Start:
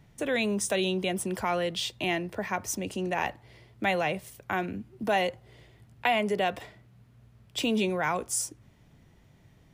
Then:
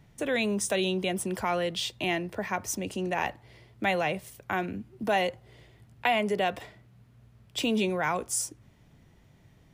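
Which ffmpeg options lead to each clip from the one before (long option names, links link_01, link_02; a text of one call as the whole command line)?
ffmpeg -i in.wav -af anull out.wav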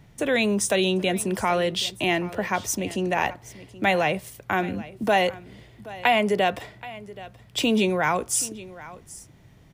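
ffmpeg -i in.wav -af "aecho=1:1:777:0.126,volume=5.5dB" out.wav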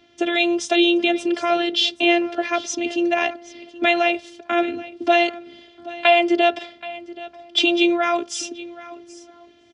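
ffmpeg -i in.wav -filter_complex "[0:a]afftfilt=real='hypot(re,im)*cos(PI*b)':imag='0':win_size=512:overlap=0.75,highpass=150,equalizer=frequency=980:width_type=q:width=4:gain=-10,equalizer=frequency=1900:width_type=q:width=4:gain=-4,equalizer=frequency=3200:width_type=q:width=4:gain=6,lowpass=frequency=5500:width=0.5412,lowpass=frequency=5500:width=1.3066,asplit=2[link_01][link_02];[link_02]adelay=1283,volume=-27dB,highshelf=frequency=4000:gain=-28.9[link_03];[link_01][link_03]amix=inputs=2:normalize=0,volume=8.5dB" out.wav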